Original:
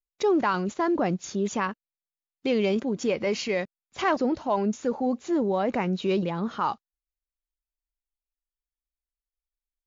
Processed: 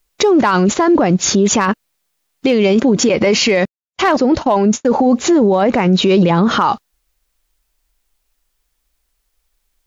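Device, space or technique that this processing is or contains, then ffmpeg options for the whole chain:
loud club master: -filter_complex "[0:a]acompressor=threshold=-26dB:ratio=2,asoftclip=type=hard:threshold=-19.5dB,alimiter=level_in=30dB:limit=-1dB:release=50:level=0:latency=1,asettb=1/sr,asplit=3[a][b][c];[a]atrim=end=3.094[d];[b]atrim=start=3.09:end=5.09,asetpts=PTS-STARTPTS,afade=t=in:d=0.004:c=qsin,afade=t=out:st=1.996:d=0.004:c=qsin,agate=range=-60dB:threshold=-10dB:ratio=16:detection=peak[e];[c]atrim=start=5.086[f];[d][e]acrossfade=d=0.004:c1=hsin:c2=qsin[g];[g][f]acrossfade=d=0.004:c1=qsin:c2=hsin,volume=-4.5dB"

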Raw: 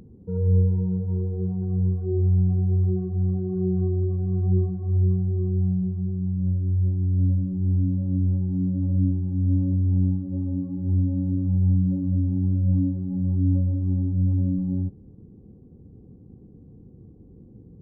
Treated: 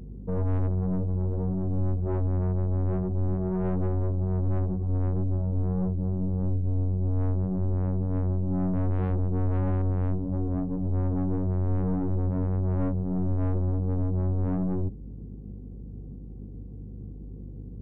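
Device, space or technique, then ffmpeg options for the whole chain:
valve amplifier with mains hum: -filter_complex "[0:a]asettb=1/sr,asplit=3[a][b][c];[a]atrim=end=8.734[d];[b]atrim=start=8.73:end=9.82,asetpts=PTS-STARTPTS,afade=t=in:d=0.004:c=qsin,afade=t=out:st=1.086:d=0.004:c=qsin,lowshelf=f=360:g=4.5[e];[c]atrim=start=9.816[f];[d][e]acrossfade=d=0.004:c1=hsin:c2=qsin[g];[g][f]acrossfade=d=0.004:c1=qsin:c2=hsin,aeval=exprs='(tanh(28.2*val(0)+0.55)-tanh(0.55))/28.2':c=same,aeval=exprs='val(0)+0.00631*(sin(2*PI*50*n/s)+sin(2*PI*2*50*n/s)/2+sin(2*PI*3*50*n/s)/3+sin(2*PI*4*50*n/s)/4+sin(2*PI*5*50*n/s)/5)':c=same,volume=4.5dB"

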